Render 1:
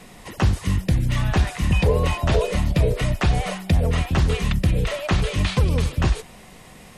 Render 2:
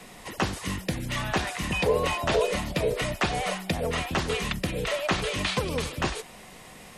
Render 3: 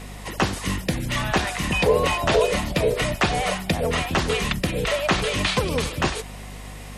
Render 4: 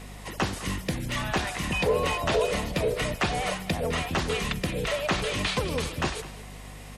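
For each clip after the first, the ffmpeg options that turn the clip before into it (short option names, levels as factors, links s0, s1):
-filter_complex "[0:a]lowshelf=f=230:g=-7,acrossover=split=190[s0][s1];[s0]acompressor=threshold=0.02:ratio=6[s2];[s2][s1]amix=inputs=2:normalize=0"
-af "aeval=exprs='val(0)+0.00794*(sin(2*PI*50*n/s)+sin(2*PI*2*50*n/s)/2+sin(2*PI*3*50*n/s)/3+sin(2*PI*4*50*n/s)/4+sin(2*PI*5*50*n/s)/5)':c=same,volume=1.78"
-filter_complex "[0:a]asplit=2[s0][s1];[s1]asoftclip=type=hard:threshold=0.126,volume=0.355[s2];[s0][s2]amix=inputs=2:normalize=0,aecho=1:1:207:0.15,volume=0.422"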